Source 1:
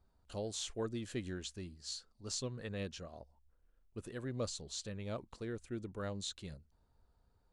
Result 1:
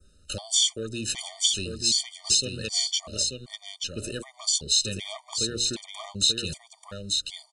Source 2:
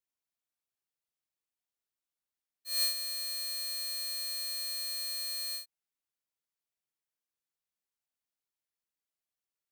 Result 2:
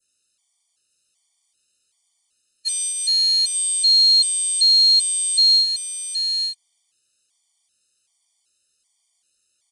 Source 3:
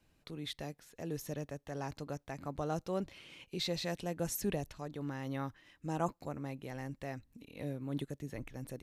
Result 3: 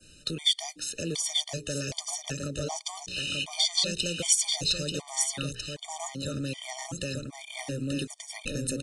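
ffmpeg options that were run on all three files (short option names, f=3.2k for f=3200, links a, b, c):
-filter_complex "[0:a]bandreject=f=60:t=h:w=6,bandreject=f=120:t=h:w=6,bandreject=f=180:t=h:w=6,bandreject=f=240:t=h:w=6,bandreject=f=300:t=h:w=6,bandreject=f=360:t=h:w=6,bandreject=f=420:t=h:w=6,bandreject=f=480:t=h:w=6,adynamicequalizer=threshold=0.00178:dfrequency=3400:dqfactor=1.3:tfrequency=3400:tqfactor=1.3:attack=5:release=100:ratio=0.375:range=3.5:mode=boostabove:tftype=bell,acrossover=split=160|3700[a][b][c];[b]alimiter=level_in=5.5dB:limit=-24dB:level=0:latency=1:release=402,volume=-5.5dB[d];[a][d][c]amix=inputs=3:normalize=0,acompressor=threshold=-44dB:ratio=3,asplit=2[e][f];[f]aeval=exprs='0.0335*sin(PI/2*2.51*val(0)/0.0335)':c=same,volume=-10dB[g];[e][g]amix=inputs=2:normalize=0,aexciter=amount=3.8:drive=6:freq=2.6k,aecho=1:1:887:0.596,aresample=22050,aresample=44100,afftfilt=real='re*gt(sin(2*PI*1.3*pts/sr)*(1-2*mod(floor(b*sr/1024/610),2)),0)':imag='im*gt(sin(2*PI*1.3*pts/sr)*(1-2*mod(floor(b*sr/1024/610),2)),0)':win_size=1024:overlap=0.75,volume=7.5dB"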